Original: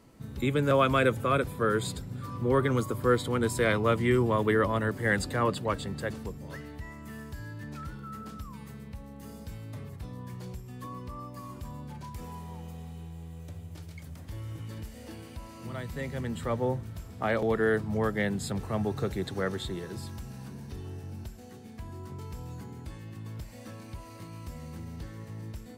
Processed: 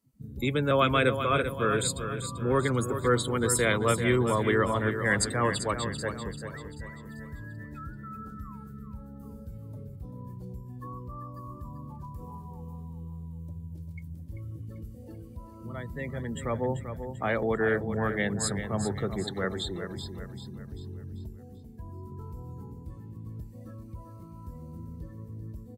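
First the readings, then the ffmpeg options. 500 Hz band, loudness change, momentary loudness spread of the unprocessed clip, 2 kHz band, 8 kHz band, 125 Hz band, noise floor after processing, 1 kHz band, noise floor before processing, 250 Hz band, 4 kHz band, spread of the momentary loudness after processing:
0.0 dB, +1.5 dB, 18 LU, +2.0 dB, +9.0 dB, 0.0 dB, -46 dBFS, +1.0 dB, -46 dBFS, 0.0 dB, +4.0 dB, 19 LU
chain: -af "afftdn=nr=26:nf=-42,aemphasis=mode=production:type=75fm,aecho=1:1:390|780|1170|1560|1950:0.355|0.156|0.0687|0.0302|0.0133"

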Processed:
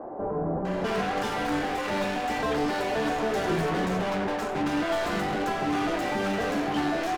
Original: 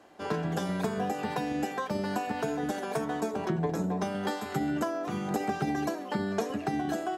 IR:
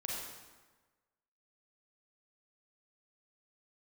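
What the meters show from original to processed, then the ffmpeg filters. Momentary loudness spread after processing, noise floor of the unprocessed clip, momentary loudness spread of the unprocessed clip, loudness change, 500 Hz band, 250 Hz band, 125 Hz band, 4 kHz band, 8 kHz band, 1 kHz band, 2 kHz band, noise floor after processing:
2 LU, -39 dBFS, 2 LU, +4.0 dB, +4.5 dB, +2.5 dB, +0.5 dB, +8.0 dB, +2.5 dB, +5.0 dB, +7.5 dB, -31 dBFS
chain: -filter_complex "[0:a]asplit=2[a][b];[b]highpass=f=720:p=1,volume=38dB,asoftclip=type=tanh:threshold=-15.5dB[c];[a][c]amix=inputs=2:normalize=0,lowpass=f=1.7k:p=1,volume=-6dB,acrossover=split=910[d][e];[e]adelay=650[f];[d][f]amix=inputs=2:normalize=0,asplit=2[g][h];[1:a]atrim=start_sample=2205,adelay=27[i];[h][i]afir=irnorm=-1:irlink=0,volume=-11.5dB[j];[g][j]amix=inputs=2:normalize=0,flanger=delay=7.9:depth=5.6:regen=-64:speed=0.65:shape=triangular"

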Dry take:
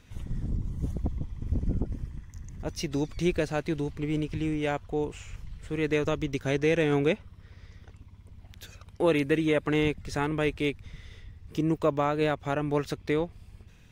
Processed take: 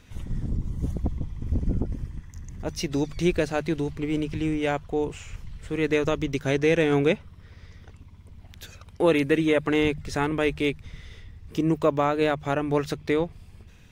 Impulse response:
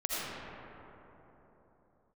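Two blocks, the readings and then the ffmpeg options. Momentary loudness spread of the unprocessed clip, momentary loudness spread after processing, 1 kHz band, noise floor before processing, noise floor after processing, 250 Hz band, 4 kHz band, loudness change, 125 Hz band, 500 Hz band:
18 LU, 17 LU, +3.5 dB, -53 dBFS, -50 dBFS, +3.5 dB, +3.5 dB, +3.5 dB, +2.0 dB, +3.5 dB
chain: -af "bandreject=f=50:t=h:w=6,bandreject=f=100:t=h:w=6,bandreject=f=150:t=h:w=6,volume=3.5dB"

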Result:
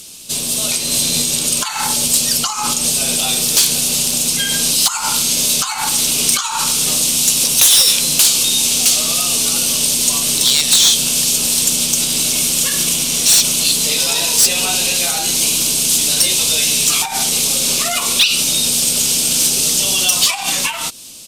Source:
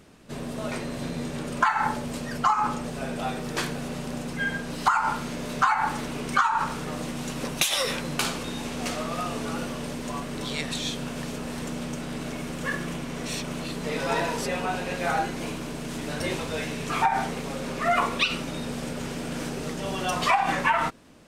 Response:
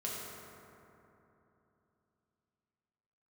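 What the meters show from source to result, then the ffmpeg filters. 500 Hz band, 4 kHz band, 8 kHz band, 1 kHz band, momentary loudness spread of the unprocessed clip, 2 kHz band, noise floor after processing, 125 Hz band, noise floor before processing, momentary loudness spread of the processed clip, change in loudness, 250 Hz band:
+1.5 dB, +20.5 dB, +27.5 dB, -1.0 dB, 10 LU, +6.0 dB, -23 dBFS, +3.0 dB, -35 dBFS, 5 LU, +16.0 dB, +3.0 dB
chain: -af "acompressor=threshold=-29dB:ratio=6,highshelf=f=8.3k:g=8.5,dynaudnorm=f=110:g=17:m=10dB,aexciter=amount=13.3:drive=3.3:freq=2.7k,aresample=32000,aresample=44100,asoftclip=type=hard:threshold=0dB,alimiter=limit=-8.5dB:level=0:latency=1:release=272,volume=2.5dB"

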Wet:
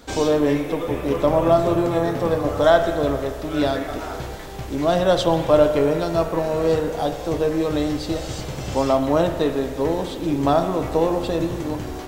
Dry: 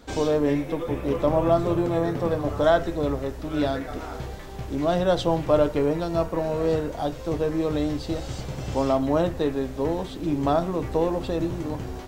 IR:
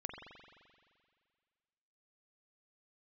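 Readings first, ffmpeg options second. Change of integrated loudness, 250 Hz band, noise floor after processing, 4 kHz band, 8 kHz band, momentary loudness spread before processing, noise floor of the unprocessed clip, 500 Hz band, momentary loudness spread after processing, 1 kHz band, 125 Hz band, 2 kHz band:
+4.0 dB, +3.0 dB, -32 dBFS, +6.0 dB, +7.0 dB, 10 LU, -37 dBFS, +4.5 dB, 10 LU, +5.0 dB, +2.0 dB, +5.5 dB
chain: -filter_complex "[0:a]asplit=2[a][b];[1:a]atrim=start_sample=2205,lowshelf=f=180:g=-12,highshelf=f=4.1k:g=8[c];[b][c]afir=irnorm=-1:irlink=0,volume=0.5dB[d];[a][d]amix=inputs=2:normalize=0"

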